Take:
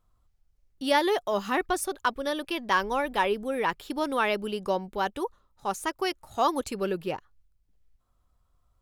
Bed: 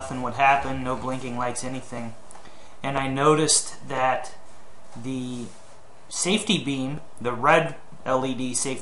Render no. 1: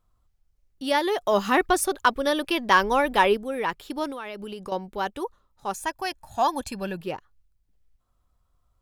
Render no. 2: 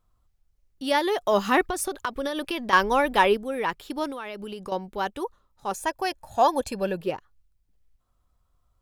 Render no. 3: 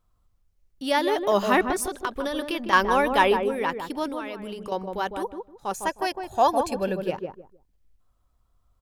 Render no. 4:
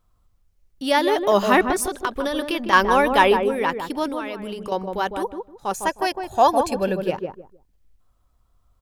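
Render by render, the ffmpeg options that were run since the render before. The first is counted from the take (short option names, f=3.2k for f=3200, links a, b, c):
-filter_complex "[0:a]asettb=1/sr,asplit=3[a][b][c];[a]atrim=end=4.104[d];[b]atrim=start=4.1:end=4.72,asetpts=PTS-STARTPTS,afade=t=in:d=0.004:c=qsin,afade=t=out:st=0.616:d=0.004:c=qsin,acompressor=threshold=-31dB:ratio=10:attack=3.2:release=140:knee=1:detection=peak[e];[c]atrim=start=4.716[f];[d][e]acrossfade=d=0.004:c1=hsin:c2=qsin[g];[g][f]acrossfade=d=0.004:c1=qsin:c2=hsin,asettb=1/sr,asplit=3[h][i][j];[h]atrim=end=5.744[k];[i]atrim=start=5.74:end=7.01,asetpts=PTS-STARTPTS,afade=t=in:d=0.004:c=qsin,afade=t=out:st=1.266:d=0.004:c=qsin,aecho=1:1:1.2:0.63,atrim=end_sample=56007[l];[j]atrim=start=7.006[m];[k][l]acrossfade=d=0.004:c1=hsin:c2=qsin[n];[n][m]acrossfade=d=0.004:c1=qsin:c2=hsin,asplit=3[o][p][q];[o]atrim=end=1.212[r];[p]atrim=start=1.208:end=3.372,asetpts=PTS-STARTPTS,volume=6dB[s];[q]atrim=start=3.368[t];[r][s]acrossfade=d=0.004:c1=hsin:c2=hsin[u];[u][t]acrossfade=d=0.004:c1=hsin:c2=hsin"
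-filter_complex "[0:a]asettb=1/sr,asplit=3[a][b][c];[a]atrim=end=1.664[d];[b]atrim=start=1.66:end=2.73,asetpts=PTS-STARTPTS,afade=t=in:d=0.004:c=qsin,afade=t=out:st=1.066:d=0.004:c=qsin,acompressor=threshold=-24dB:ratio=6:attack=3.2:release=140:knee=1:detection=peak[e];[c]atrim=start=2.726[f];[d][e]acrossfade=d=0.004:c1=hsin:c2=qsin[g];[g][f]acrossfade=d=0.004:c1=qsin:c2=hsin,asettb=1/sr,asplit=3[h][i][j];[h]atrim=end=5.714[k];[i]atrim=start=5.71:end=7.1,asetpts=PTS-STARTPTS,afade=t=in:d=0.004:c=qsin,afade=t=out:st=1.386:d=0.004:c=qsin,equalizer=f=500:t=o:w=0.74:g=9.5[l];[j]atrim=start=7.096[m];[k][l]acrossfade=d=0.004:c1=hsin:c2=qsin[n];[n][m]acrossfade=d=0.004:c1=qsin:c2=hsin"
-filter_complex "[0:a]asplit=2[a][b];[b]adelay=155,lowpass=f=810:p=1,volume=-4dB,asplit=2[c][d];[d]adelay=155,lowpass=f=810:p=1,volume=0.25,asplit=2[e][f];[f]adelay=155,lowpass=f=810:p=1,volume=0.25[g];[a][c][e][g]amix=inputs=4:normalize=0"
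-af "volume=4dB,alimiter=limit=-2dB:level=0:latency=1"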